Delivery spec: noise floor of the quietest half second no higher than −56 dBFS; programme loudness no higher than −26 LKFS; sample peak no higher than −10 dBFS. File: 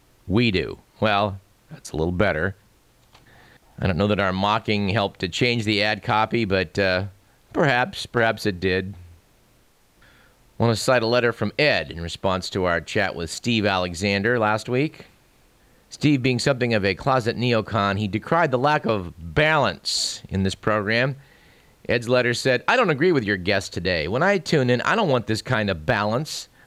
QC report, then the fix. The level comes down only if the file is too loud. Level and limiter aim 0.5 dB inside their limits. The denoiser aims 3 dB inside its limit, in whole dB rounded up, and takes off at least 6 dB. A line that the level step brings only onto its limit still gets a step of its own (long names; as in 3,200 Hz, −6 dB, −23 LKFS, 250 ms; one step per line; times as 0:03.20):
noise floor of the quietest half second −58 dBFS: in spec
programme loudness −22.0 LKFS: out of spec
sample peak −5.5 dBFS: out of spec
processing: level −4.5 dB
brickwall limiter −10.5 dBFS